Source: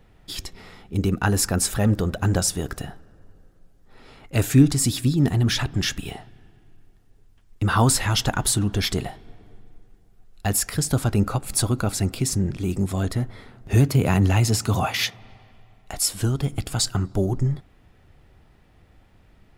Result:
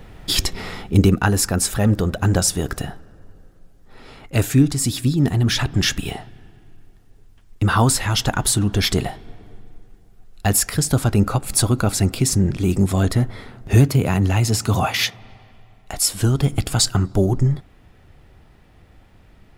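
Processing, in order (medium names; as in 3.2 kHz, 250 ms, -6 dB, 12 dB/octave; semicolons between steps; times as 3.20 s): gain riding 0.5 s; trim +3.5 dB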